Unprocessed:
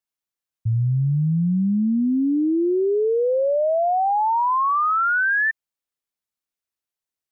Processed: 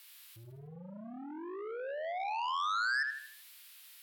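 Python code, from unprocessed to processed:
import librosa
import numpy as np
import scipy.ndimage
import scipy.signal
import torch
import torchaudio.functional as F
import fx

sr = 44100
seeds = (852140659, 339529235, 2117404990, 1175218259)

p1 = x + 0.5 * 10.0 ** (-27.0 / 20.0) * np.diff(np.sign(x), prepend=np.sign(x[:1]))
p2 = fx.air_absorb(p1, sr, metres=450.0)
p3 = p2 + 10.0 ** (-20.5 / 20.0) * np.pad(p2, (int(193 * sr / 1000.0), 0))[:len(p2)]
p4 = fx.env_lowpass_down(p3, sr, base_hz=560.0, full_db=-16.0)
p5 = scipy.signal.sosfilt(scipy.signal.butter(4, 55.0, 'highpass', fs=sr, output='sos'), p4)
p6 = p5 + fx.echo_feedback(p5, sr, ms=141, feedback_pct=44, wet_db=-5.5, dry=0)
p7 = fx.stretch_vocoder(p6, sr, factor=0.55)
p8 = 10.0 ** (-19.0 / 20.0) * np.tanh(p7 / 10.0 ** (-19.0 / 20.0))
p9 = np.diff(p8, prepend=0.0)
y = p9 * 10.0 ** (6.0 / 20.0)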